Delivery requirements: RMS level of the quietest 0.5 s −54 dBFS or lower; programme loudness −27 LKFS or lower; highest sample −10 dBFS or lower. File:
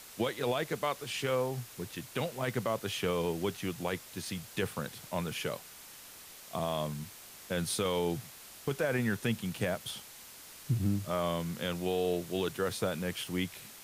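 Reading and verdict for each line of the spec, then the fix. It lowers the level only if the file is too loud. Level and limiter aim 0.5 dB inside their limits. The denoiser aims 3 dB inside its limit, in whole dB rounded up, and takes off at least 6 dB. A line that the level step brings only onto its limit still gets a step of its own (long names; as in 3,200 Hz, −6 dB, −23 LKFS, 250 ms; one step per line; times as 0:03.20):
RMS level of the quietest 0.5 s −51 dBFS: out of spec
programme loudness −34.5 LKFS: in spec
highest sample −20.0 dBFS: in spec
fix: broadband denoise 6 dB, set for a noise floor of −51 dBFS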